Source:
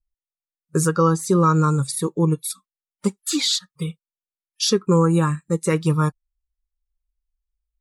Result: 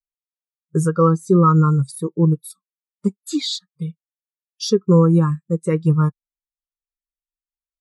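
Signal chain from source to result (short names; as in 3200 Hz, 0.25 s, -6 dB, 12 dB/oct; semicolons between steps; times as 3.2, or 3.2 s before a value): spectral expander 1.5:1; gain +3 dB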